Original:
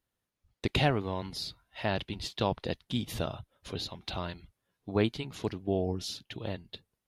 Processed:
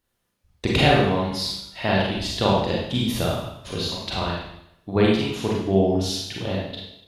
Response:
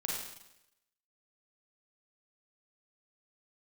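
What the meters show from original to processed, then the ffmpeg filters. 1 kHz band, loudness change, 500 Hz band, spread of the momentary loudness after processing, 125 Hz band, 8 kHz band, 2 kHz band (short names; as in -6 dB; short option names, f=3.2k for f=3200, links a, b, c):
+11.0 dB, +10.5 dB, +11.0 dB, 11 LU, +9.5 dB, +11.0 dB, +11.0 dB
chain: -filter_complex "[1:a]atrim=start_sample=2205,asetrate=48510,aresample=44100[a];[0:a][a]afir=irnorm=-1:irlink=0,volume=8.5dB"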